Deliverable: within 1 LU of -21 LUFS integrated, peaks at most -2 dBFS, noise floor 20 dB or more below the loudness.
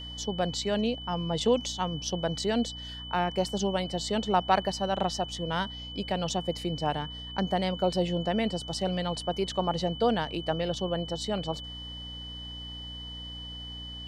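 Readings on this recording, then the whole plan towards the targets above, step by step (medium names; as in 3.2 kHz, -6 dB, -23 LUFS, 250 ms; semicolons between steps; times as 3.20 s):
hum 60 Hz; highest harmonic 300 Hz; hum level -42 dBFS; steady tone 3 kHz; tone level -40 dBFS; loudness -30.5 LUFS; peak level -10.0 dBFS; loudness target -21.0 LUFS
-> de-hum 60 Hz, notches 5; band-stop 3 kHz, Q 30; trim +9.5 dB; peak limiter -2 dBFS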